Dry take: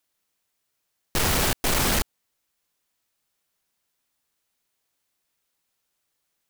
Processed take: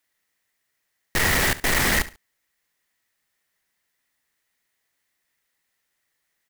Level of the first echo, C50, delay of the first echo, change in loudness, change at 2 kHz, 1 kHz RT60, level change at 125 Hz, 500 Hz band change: -17.0 dB, none, 70 ms, +2.0 dB, +7.5 dB, none, 0.0 dB, 0.0 dB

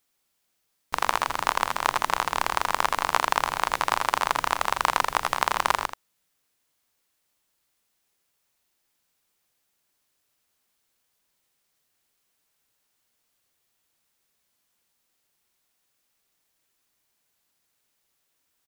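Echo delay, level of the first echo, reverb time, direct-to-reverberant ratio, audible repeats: 82 ms, -9.0 dB, none, none, 1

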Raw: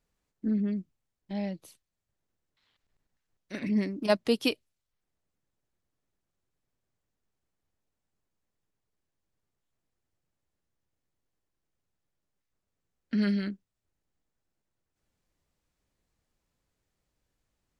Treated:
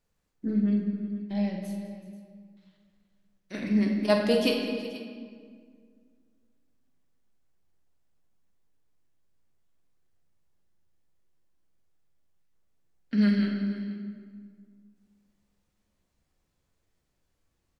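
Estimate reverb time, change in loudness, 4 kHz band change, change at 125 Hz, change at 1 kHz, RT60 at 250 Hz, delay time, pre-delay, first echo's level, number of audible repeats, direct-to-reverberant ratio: 1.9 s, +2.5 dB, +2.5 dB, n/a, +2.5 dB, 2.5 s, 44 ms, 11 ms, -9.5 dB, 4, 0.5 dB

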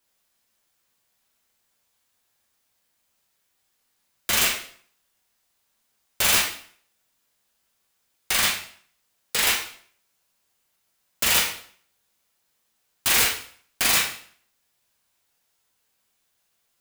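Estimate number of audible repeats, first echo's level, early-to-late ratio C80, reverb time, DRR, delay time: none, none, 10.5 dB, 0.55 s, -1.5 dB, none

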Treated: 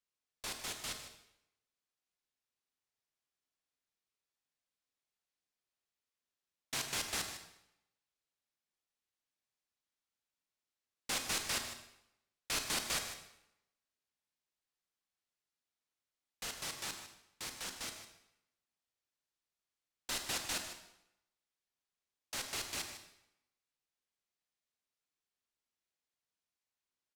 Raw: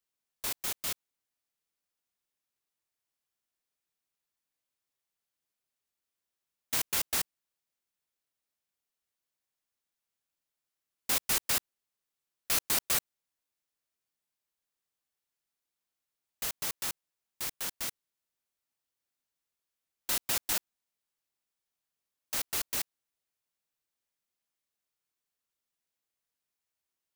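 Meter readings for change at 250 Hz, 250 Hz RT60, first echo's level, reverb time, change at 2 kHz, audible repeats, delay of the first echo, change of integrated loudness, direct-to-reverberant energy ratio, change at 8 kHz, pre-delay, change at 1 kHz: -2.5 dB, 0.85 s, -12.5 dB, 0.80 s, -2.5 dB, 1, 0.153 s, -7.5 dB, 4.5 dB, -6.0 dB, 27 ms, -3.0 dB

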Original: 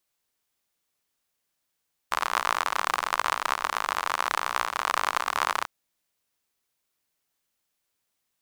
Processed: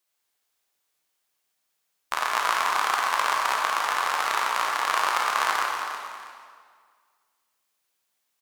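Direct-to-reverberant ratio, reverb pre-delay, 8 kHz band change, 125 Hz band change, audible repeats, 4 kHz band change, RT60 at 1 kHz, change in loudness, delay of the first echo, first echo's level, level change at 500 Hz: -1.0 dB, 19 ms, +3.0 dB, n/a, 2, +3.0 dB, 1.9 s, +3.0 dB, 0.322 s, -9.0 dB, +2.0 dB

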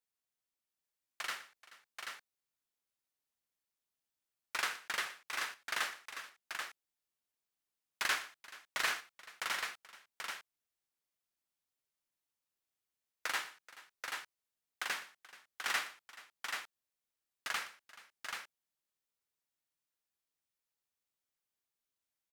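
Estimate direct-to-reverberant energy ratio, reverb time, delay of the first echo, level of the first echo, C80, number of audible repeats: none, none, 0.122 s, -17.0 dB, none, 3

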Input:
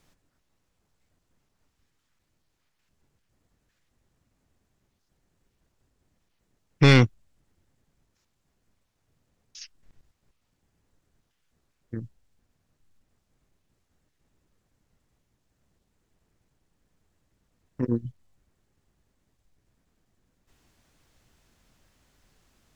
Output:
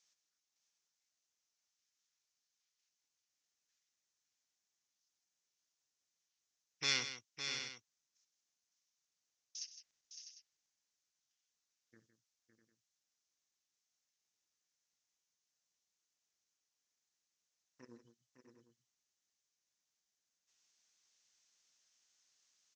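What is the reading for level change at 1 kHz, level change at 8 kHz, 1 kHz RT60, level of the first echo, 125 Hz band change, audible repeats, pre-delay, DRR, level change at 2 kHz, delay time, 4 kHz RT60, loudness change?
-19.5 dB, 0.0 dB, none, -16.0 dB, -37.0 dB, 5, none, none, -13.5 dB, 64 ms, none, -18.0 dB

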